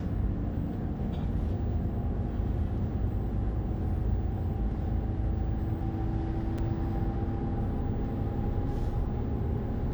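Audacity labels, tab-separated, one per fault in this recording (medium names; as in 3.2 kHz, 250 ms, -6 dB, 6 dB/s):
6.580000	6.590000	dropout 5.2 ms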